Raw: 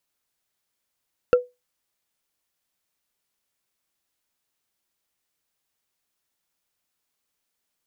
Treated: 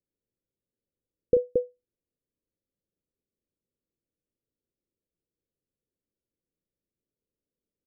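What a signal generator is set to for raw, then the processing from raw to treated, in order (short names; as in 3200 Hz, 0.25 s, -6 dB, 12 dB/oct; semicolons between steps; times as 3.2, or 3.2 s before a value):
wood hit, lowest mode 494 Hz, decay 0.21 s, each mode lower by 9 dB, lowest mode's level -8.5 dB
steep low-pass 530 Hz 48 dB/oct; on a send: loudspeakers at several distances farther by 12 m -8 dB, 77 m -4 dB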